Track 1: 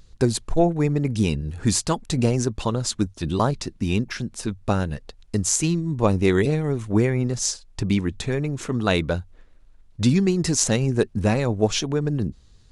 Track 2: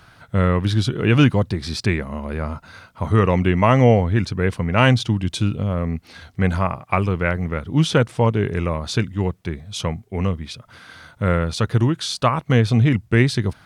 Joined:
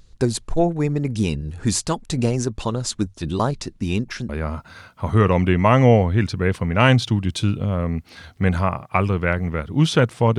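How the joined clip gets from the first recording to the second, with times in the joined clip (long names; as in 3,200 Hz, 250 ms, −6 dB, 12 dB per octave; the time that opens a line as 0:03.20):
track 1
0:04.29: continue with track 2 from 0:02.27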